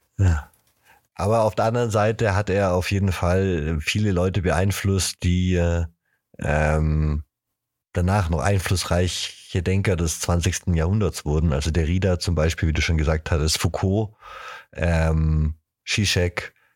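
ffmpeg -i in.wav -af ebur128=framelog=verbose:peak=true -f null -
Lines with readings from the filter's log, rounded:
Integrated loudness:
  I:         -22.2 LUFS
  Threshold: -32.6 LUFS
Loudness range:
  LRA:         2.1 LU
  Threshold: -42.6 LUFS
  LRA low:   -23.7 LUFS
  LRA high:  -21.6 LUFS
True peak:
  Peak:       -4.3 dBFS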